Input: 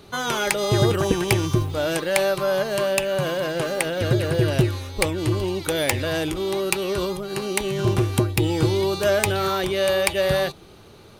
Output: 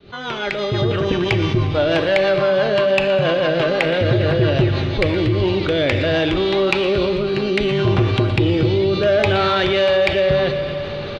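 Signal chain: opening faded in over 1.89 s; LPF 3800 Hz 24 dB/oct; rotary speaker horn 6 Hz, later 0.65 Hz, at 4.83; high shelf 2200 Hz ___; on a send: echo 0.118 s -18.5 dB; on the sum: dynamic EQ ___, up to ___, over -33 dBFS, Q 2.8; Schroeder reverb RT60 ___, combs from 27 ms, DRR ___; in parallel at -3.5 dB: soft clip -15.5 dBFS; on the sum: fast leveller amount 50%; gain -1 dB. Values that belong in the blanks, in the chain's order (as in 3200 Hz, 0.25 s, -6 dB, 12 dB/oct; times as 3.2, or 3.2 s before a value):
+4 dB, 650 Hz, +3 dB, 2.2 s, 9.5 dB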